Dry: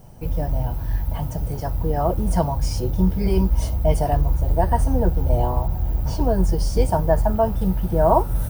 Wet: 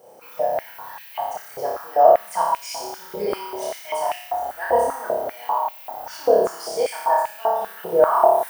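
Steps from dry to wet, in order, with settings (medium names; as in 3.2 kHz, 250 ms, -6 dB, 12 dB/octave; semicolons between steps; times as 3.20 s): on a send: flutter echo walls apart 5 m, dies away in 1 s; on the sum: step-sequenced high-pass 5.1 Hz 490–2500 Hz; trim -3.5 dB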